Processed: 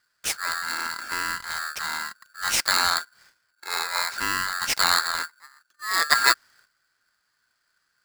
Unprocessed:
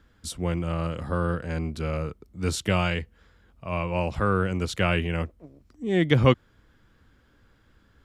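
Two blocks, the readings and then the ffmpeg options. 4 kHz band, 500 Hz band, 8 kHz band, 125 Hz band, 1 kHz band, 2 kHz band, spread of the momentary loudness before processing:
+11.0 dB, -14.5 dB, +13.5 dB, -25.5 dB, +5.5 dB, +8.0 dB, 11 LU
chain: -af "highshelf=f=2.2k:t=q:w=3:g=9.5,agate=range=-12dB:threshold=-53dB:ratio=16:detection=peak,aeval=exprs='val(0)*sgn(sin(2*PI*1500*n/s))':c=same,volume=-2.5dB"

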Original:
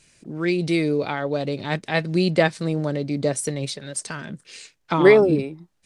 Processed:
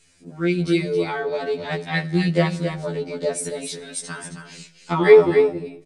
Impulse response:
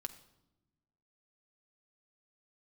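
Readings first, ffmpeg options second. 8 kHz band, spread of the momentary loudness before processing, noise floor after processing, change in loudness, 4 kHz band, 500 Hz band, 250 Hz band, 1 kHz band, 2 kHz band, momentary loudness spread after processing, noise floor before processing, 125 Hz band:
0.0 dB, 17 LU, -52 dBFS, +1.0 dB, -1.0 dB, +2.0 dB, -1.0 dB, -0.5 dB, -0.5 dB, 18 LU, -65 dBFS, 0.0 dB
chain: -filter_complex "[0:a]aecho=1:1:268:0.398,asplit=2[a][b];[1:a]atrim=start_sample=2205,afade=t=out:st=0.36:d=0.01,atrim=end_sample=16317,asetrate=29988,aresample=44100[c];[b][c]afir=irnorm=-1:irlink=0,volume=-2dB[d];[a][d]amix=inputs=2:normalize=0,afftfilt=real='re*2*eq(mod(b,4),0)':imag='im*2*eq(mod(b,4),0)':win_size=2048:overlap=0.75,volume=-3.5dB"

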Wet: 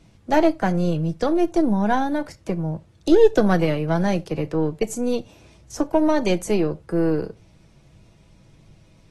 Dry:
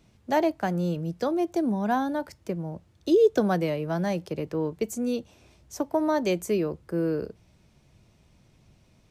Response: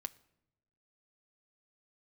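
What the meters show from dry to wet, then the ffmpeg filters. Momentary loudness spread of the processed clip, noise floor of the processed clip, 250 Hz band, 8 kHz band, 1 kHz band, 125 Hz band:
10 LU, -54 dBFS, +6.0 dB, +5.0 dB, +5.0 dB, +7.0 dB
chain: -filter_complex "[0:a]aeval=exprs='0.282*(cos(1*acos(clip(val(0)/0.282,-1,1)))-cos(1*PI/2))+0.0224*(cos(2*acos(clip(val(0)/0.282,-1,1)))-cos(2*PI/2))+0.00891*(cos(6*acos(clip(val(0)/0.282,-1,1)))-cos(6*PI/2))':c=same,lowshelf=f=97:g=6[a];[1:a]atrim=start_sample=2205,afade=t=out:st=0.14:d=0.01,atrim=end_sample=6615[b];[a][b]afir=irnorm=-1:irlink=0,volume=7.5dB" -ar 32000 -c:a aac -b:a 32k

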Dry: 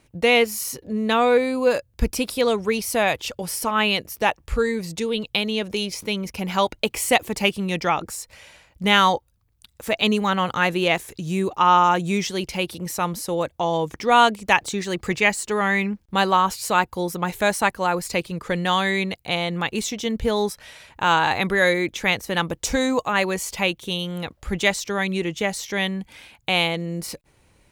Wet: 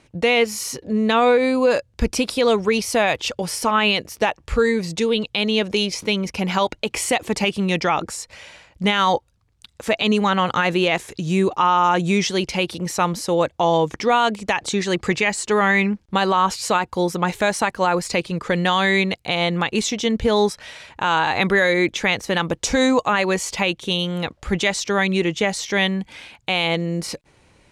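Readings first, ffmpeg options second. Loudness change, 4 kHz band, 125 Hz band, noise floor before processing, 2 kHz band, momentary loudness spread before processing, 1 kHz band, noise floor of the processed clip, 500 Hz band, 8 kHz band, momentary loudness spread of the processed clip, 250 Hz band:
+2.0 dB, +2.0 dB, +3.5 dB, -62 dBFS, +1.5 dB, 9 LU, +0.5 dB, -60 dBFS, +3.0 dB, +2.0 dB, 7 LU, +3.5 dB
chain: -af "lowpass=7.5k,lowshelf=f=77:g=-7,alimiter=limit=-13.5dB:level=0:latency=1:release=74,volume=5.5dB"

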